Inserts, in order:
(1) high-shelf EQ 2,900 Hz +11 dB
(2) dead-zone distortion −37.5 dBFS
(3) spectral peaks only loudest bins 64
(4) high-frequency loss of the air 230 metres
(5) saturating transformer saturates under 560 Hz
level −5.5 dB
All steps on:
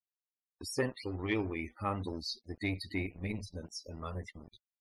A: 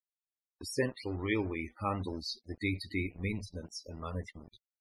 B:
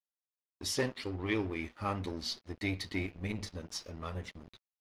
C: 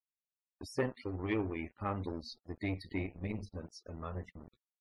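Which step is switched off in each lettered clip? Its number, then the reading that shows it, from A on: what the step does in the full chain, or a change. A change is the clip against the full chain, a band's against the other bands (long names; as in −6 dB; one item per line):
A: 5, change in integrated loudness +1.0 LU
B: 3, 8 kHz band +5.0 dB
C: 1, 4 kHz band −8.0 dB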